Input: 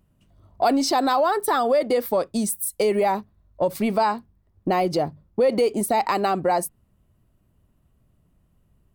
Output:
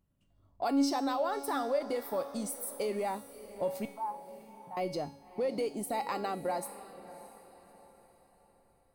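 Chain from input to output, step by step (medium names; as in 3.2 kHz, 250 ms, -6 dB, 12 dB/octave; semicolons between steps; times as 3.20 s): 3.85–4.77 s: two resonant band-passes 340 Hz, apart 2.8 oct; feedback comb 280 Hz, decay 0.69 s, mix 80%; echo that smears into a reverb 610 ms, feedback 42%, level -15 dB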